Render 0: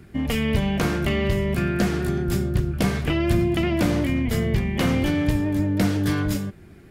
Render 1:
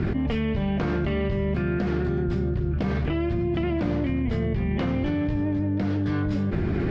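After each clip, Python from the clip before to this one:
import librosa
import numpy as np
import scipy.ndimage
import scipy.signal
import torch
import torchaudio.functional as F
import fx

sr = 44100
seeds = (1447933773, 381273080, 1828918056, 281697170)

y = scipy.signal.sosfilt(scipy.signal.butter(4, 5200.0, 'lowpass', fs=sr, output='sos'), x)
y = fx.high_shelf(y, sr, hz=2400.0, db=-11.0)
y = fx.env_flatten(y, sr, amount_pct=100)
y = y * 10.0 ** (-7.5 / 20.0)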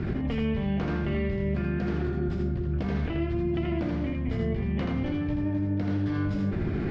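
y = x + 10.0 ** (-3.5 / 20.0) * np.pad(x, (int(81 * sr / 1000.0), 0))[:len(x)]
y = y * 10.0 ** (-5.5 / 20.0)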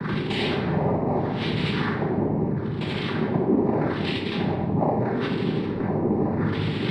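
y = fx.filter_lfo_lowpass(x, sr, shape='sine', hz=0.78, low_hz=500.0, high_hz=2600.0, q=6.7)
y = fx.noise_vocoder(y, sr, seeds[0], bands=6)
y = fx.room_shoebox(y, sr, seeds[1], volume_m3=660.0, walls='mixed', distance_m=1.2)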